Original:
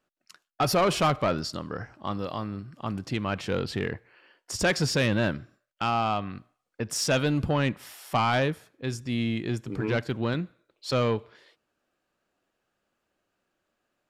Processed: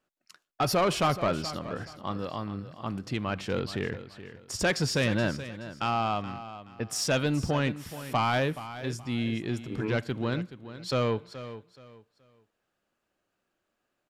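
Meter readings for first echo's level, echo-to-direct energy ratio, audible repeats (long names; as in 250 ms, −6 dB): −13.5 dB, −13.0 dB, 2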